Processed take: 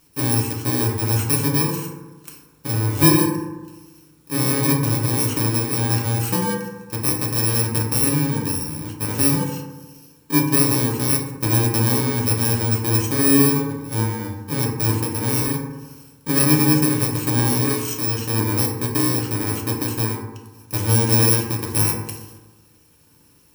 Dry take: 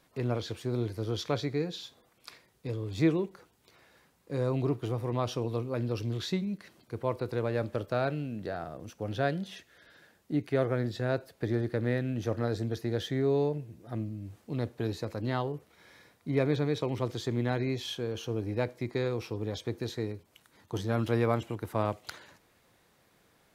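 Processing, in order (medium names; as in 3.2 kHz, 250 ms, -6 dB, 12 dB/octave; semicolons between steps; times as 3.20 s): bit-reversed sample order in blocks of 64 samples; FDN reverb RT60 1.2 s, low-frequency decay 1.1×, high-frequency decay 0.35×, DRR -1 dB; trim +8 dB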